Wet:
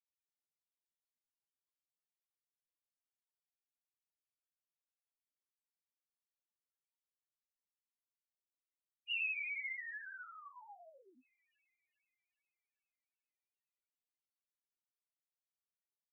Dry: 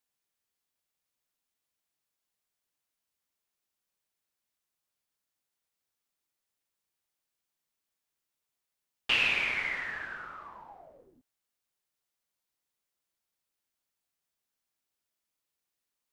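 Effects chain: thinning echo 403 ms, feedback 59%, high-pass 560 Hz, level -24 dB; loudest bins only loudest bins 1; trim +2.5 dB

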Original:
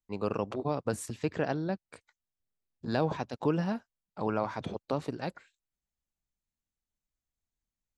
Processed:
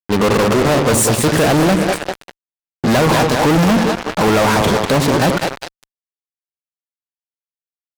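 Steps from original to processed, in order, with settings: treble shelf 5.9 kHz +4 dB; two-band feedback delay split 340 Hz, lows 84 ms, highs 197 ms, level -10 dB; fuzz box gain 46 dB, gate -46 dBFS; trim +2.5 dB

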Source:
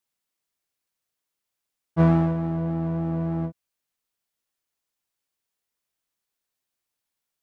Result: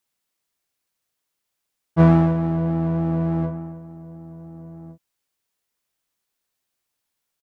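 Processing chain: echo from a far wall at 250 m, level -17 dB; trim +4.5 dB

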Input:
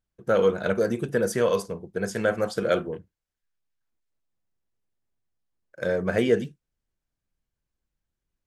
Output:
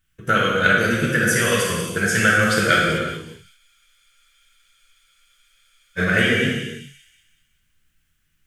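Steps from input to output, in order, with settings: tone controls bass +11 dB, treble +14 dB; feedback echo behind a high-pass 187 ms, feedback 45%, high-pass 5.2 kHz, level -11 dB; compression 5:1, threshold -22 dBFS, peak gain reduction 9 dB; high-order bell 2 kHz +15 dB; gated-style reverb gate 470 ms falling, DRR -4 dB; spectral freeze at 3.59 s, 2.40 s

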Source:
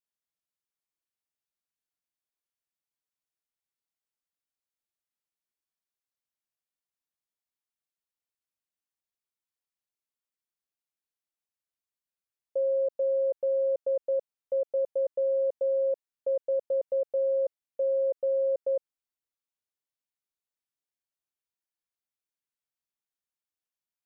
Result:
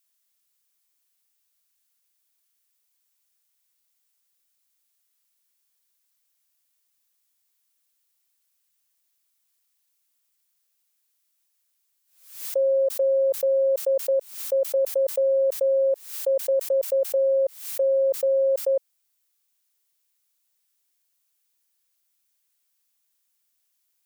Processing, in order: tilt EQ +3.5 dB/octave; swell ahead of each attack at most 100 dB/s; trim +8.5 dB

